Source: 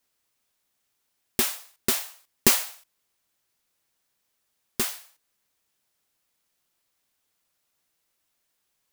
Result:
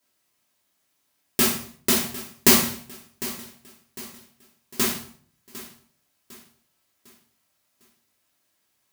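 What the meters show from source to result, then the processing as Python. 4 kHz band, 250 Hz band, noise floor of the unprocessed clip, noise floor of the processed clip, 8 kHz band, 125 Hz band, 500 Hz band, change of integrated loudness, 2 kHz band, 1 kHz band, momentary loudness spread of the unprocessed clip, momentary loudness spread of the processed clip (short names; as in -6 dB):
+4.5 dB, +8.5 dB, -76 dBFS, -72 dBFS, +4.0 dB, +6.0 dB, +5.5 dB, +3.0 dB, +4.5 dB, +5.5 dB, 17 LU, 24 LU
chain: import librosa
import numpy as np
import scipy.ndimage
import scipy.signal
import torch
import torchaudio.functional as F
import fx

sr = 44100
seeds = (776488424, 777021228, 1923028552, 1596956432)

p1 = scipy.signal.sosfilt(scipy.signal.butter(2, 75.0, 'highpass', fs=sr, output='sos'), x)
p2 = p1 + fx.echo_feedback(p1, sr, ms=753, feedback_pct=43, wet_db=-16, dry=0)
y = fx.room_shoebox(p2, sr, seeds[0], volume_m3=320.0, walls='furnished', distance_m=2.9)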